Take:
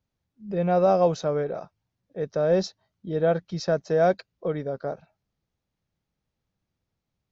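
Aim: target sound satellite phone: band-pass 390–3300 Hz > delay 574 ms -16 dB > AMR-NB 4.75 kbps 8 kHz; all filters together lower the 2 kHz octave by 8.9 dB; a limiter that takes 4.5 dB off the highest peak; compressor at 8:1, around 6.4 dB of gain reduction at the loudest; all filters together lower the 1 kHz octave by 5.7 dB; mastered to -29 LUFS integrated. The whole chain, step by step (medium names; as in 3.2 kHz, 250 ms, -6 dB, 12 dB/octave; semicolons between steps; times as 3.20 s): peaking EQ 1 kHz -8 dB; peaking EQ 2 kHz -8.5 dB; compression 8:1, threshold -25 dBFS; peak limiter -23 dBFS; band-pass 390–3300 Hz; delay 574 ms -16 dB; trim +8 dB; AMR-NB 4.75 kbps 8 kHz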